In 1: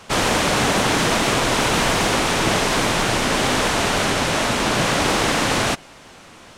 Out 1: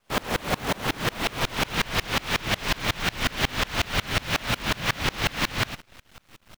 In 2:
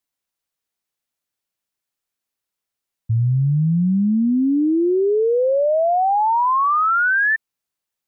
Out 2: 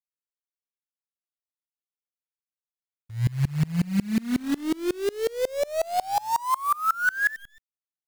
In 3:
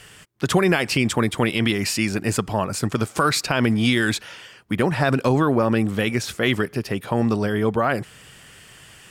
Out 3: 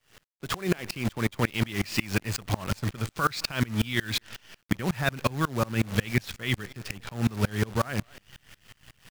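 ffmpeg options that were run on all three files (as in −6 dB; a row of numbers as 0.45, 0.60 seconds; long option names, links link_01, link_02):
-filter_complex "[0:a]lowpass=4300,asplit=2[link_01][link_02];[link_02]adelay=221.6,volume=-22dB,highshelf=frequency=4000:gain=-4.99[link_03];[link_01][link_03]amix=inputs=2:normalize=0,acrossover=split=1600[link_04][link_05];[link_04]asubboost=boost=3:cutoff=180[link_06];[link_05]dynaudnorm=framelen=600:gausssize=5:maxgain=8dB[link_07];[link_06][link_07]amix=inputs=2:normalize=0,acrusher=bits=5:dc=4:mix=0:aa=0.000001,acompressor=threshold=-15dB:ratio=6,aeval=exprs='val(0)*pow(10,-28*if(lt(mod(-5.5*n/s,1),2*abs(-5.5)/1000),1-mod(-5.5*n/s,1)/(2*abs(-5.5)/1000),(mod(-5.5*n/s,1)-2*abs(-5.5)/1000)/(1-2*abs(-5.5)/1000))/20)':channel_layout=same"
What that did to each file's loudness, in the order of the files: −8.0, −8.5, −8.0 LU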